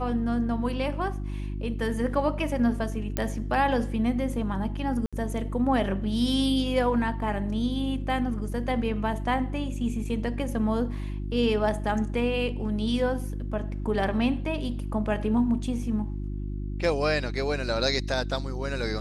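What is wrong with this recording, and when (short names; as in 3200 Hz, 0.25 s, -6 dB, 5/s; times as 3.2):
hum 50 Hz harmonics 7 -32 dBFS
3.17 pop -12 dBFS
5.06–5.13 gap 66 ms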